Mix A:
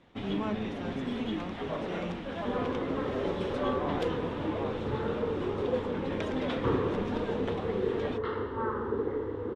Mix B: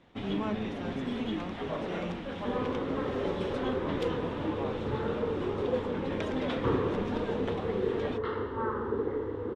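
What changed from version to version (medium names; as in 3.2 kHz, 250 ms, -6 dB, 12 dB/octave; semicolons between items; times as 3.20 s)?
speech: muted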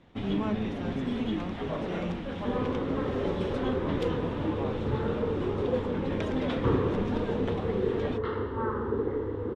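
master: add bass shelf 230 Hz +6.5 dB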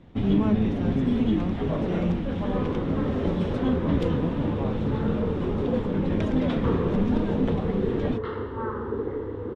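first sound: add bass shelf 410 Hz +10.5 dB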